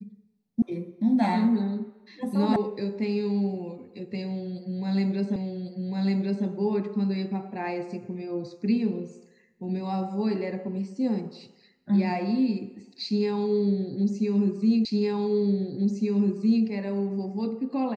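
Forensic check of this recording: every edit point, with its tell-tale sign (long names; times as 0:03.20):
0:00.62: cut off before it has died away
0:02.56: cut off before it has died away
0:05.36: the same again, the last 1.1 s
0:14.85: the same again, the last 1.81 s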